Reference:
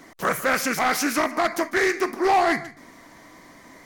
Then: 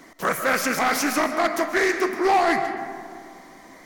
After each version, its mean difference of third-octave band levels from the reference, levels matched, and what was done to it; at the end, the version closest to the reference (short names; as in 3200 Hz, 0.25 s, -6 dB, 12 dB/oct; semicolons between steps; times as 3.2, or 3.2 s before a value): 2.5 dB: bell 110 Hz -13 dB 0.34 oct; digital reverb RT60 2.2 s, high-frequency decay 0.35×, pre-delay 90 ms, DRR 8 dB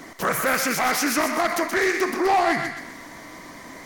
4.5 dB: limiter -22 dBFS, peak gain reduction 7 dB; thinning echo 0.126 s, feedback 45%, high-pass 960 Hz, level -6 dB; gain +6.5 dB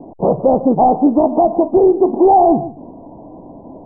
16.0 dB: steep low-pass 890 Hz 72 dB/oct; maximiser +17.5 dB; gain -2.5 dB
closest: first